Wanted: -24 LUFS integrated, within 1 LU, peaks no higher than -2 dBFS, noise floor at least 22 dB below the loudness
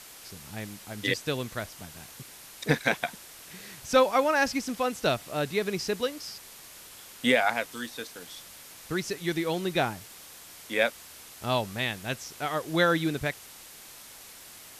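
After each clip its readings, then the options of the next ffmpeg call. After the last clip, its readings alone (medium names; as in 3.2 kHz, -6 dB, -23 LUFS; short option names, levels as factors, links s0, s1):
noise floor -48 dBFS; noise floor target -51 dBFS; loudness -28.5 LUFS; peak level -9.0 dBFS; loudness target -24.0 LUFS
-> -af "afftdn=nr=6:nf=-48"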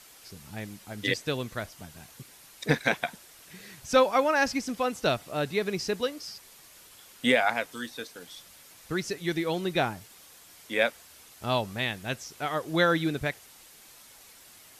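noise floor -53 dBFS; loudness -28.5 LUFS; peak level -9.0 dBFS; loudness target -24.0 LUFS
-> -af "volume=1.68"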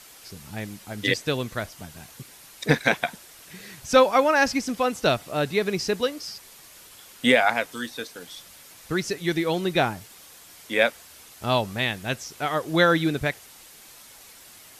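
loudness -24.0 LUFS; peak level -4.5 dBFS; noise floor -49 dBFS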